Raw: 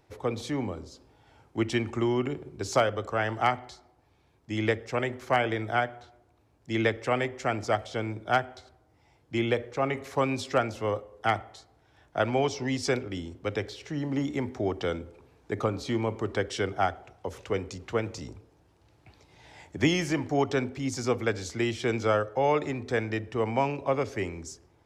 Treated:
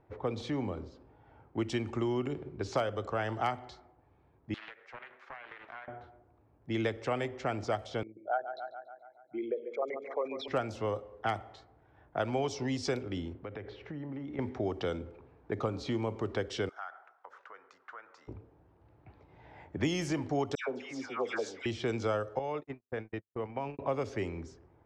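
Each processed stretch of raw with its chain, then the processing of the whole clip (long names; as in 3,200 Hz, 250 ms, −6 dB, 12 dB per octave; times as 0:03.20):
0:04.54–0:05.88: high-pass filter 1,300 Hz + downward compressor 8 to 1, threshold −40 dBFS + highs frequency-modulated by the lows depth 0.66 ms
0:08.03–0:10.48: spectral envelope exaggerated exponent 3 + high-pass filter 520 Hz + repeating echo 142 ms, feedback 60%, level −12 dB
0:13.32–0:14.39: low-pass filter 5,200 Hz + downward compressor 8 to 1, threshold −37 dBFS
0:16.69–0:18.28: parametric band 2,500 Hz −10.5 dB 1.4 octaves + downward compressor, threshold −34 dBFS + high-pass with resonance 1,400 Hz, resonance Q 2.4
0:20.55–0:21.66: high-pass filter 430 Hz + parametric band 4,200 Hz −5 dB 0.2 octaves + all-pass dispersion lows, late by 131 ms, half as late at 1,500 Hz
0:22.39–0:23.79: noise gate −30 dBFS, range −59 dB + downward compressor 2 to 1, threshold −36 dBFS
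whole clip: low-pass that shuts in the quiet parts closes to 1,400 Hz, open at −22 dBFS; dynamic equaliser 2,000 Hz, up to −4 dB, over −45 dBFS, Q 1.5; downward compressor 2 to 1, threshold −32 dBFS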